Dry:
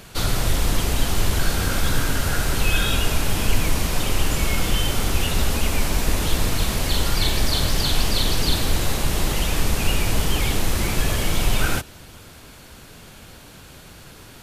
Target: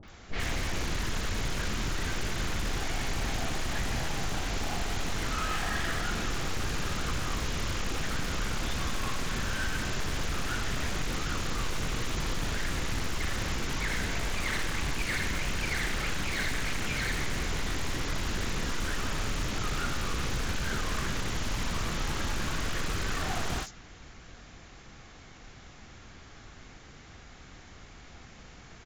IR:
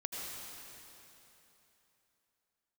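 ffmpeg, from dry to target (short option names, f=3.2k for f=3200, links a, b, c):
-filter_complex "[0:a]asetrate=22050,aresample=44100,aeval=exprs='0.112*(abs(mod(val(0)/0.112+3,4)-2)-1)':c=same,acrossover=split=670|5000[a][b][c];[b]adelay=30[d];[c]adelay=80[e];[a][d][e]amix=inputs=3:normalize=0,volume=-5.5dB"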